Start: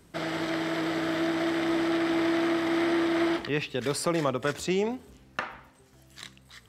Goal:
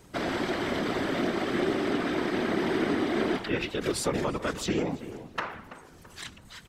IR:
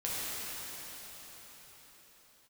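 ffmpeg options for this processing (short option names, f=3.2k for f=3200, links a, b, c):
-filter_complex "[0:a]bandreject=f=50:t=h:w=6,bandreject=f=100:t=h:w=6,bandreject=f=150:t=h:w=6,acompressor=threshold=-32dB:ratio=2,asplit=2[a][b];[b]asetrate=35002,aresample=44100,atempo=1.25992,volume=-5dB[c];[a][c]amix=inputs=2:normalize=0,asplit=2[d][e];[e]adelay=332,lowpass=f=1.9k:p=1,volume=-13dB,asplit=2[f][g];[g]adelay=332,lowpass=f=1.9k:p=1,volume=0.44,asplit=2[h][i];[i]adelay=332,lowpass=f=1.9k:p=1,volume=0.44,asplit=2[j][k];[k]adelay=332,lowpass=f=1.9k:p=1,volume=0.44[l];[d][f][h][j][l]amix=inputs=5:normalize=0,afftfilt=real='hypot(re,im)*cos(2*PI*random(0))':imag='hypot(re,im)*sin(2*PI*random(1))':win_size=512:overlap=0.75,volume=8.5dB"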